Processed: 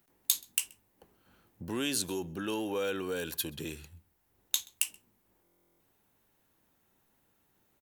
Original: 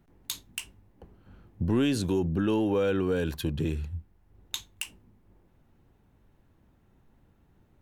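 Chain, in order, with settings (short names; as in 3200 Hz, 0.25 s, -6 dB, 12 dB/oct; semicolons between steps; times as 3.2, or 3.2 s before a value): RIAA curve recording; outdoor echo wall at 22 m, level -25 dB; stuck buffer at 5.43, samples 1024, times 15; gain -4 dB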